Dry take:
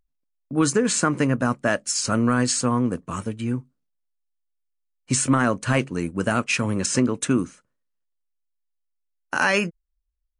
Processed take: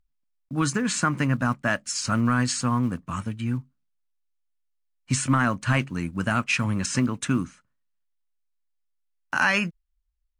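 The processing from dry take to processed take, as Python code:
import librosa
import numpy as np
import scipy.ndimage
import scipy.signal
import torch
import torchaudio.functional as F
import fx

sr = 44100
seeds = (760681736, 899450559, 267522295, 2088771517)

y = fx.block_float(x, sr, bits=7)
y = fx.lowpass(y, sr, hz=3300.0, slope=6)
y = fx.peak_eq(y, sr, hz=440.0, db=-13.5, octaves=1.2)
y = y * librosa.db_to_amplitude(2.0)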